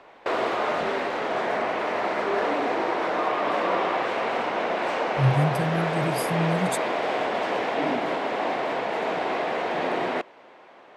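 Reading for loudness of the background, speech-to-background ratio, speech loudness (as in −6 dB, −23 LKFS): −26.0 LKFS, −1.0 dB, −27.0 LKFS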